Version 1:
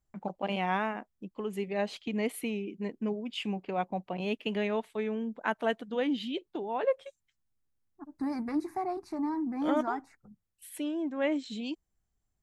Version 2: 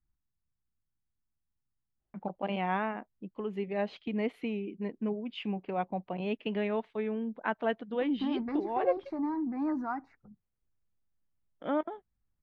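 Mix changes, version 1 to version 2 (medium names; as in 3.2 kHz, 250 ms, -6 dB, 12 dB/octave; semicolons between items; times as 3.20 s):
first voice: entry +2.00 s; master: add distance through air 260 m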